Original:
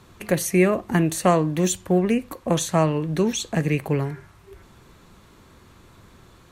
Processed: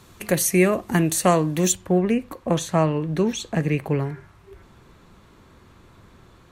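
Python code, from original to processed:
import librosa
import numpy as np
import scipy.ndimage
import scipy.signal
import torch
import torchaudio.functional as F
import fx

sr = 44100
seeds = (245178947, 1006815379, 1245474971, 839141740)

y = fx.high_shelf(x, sr, hz=4400.0, db=fx.steps((0.0, 7.0), (1.71, -6.5)))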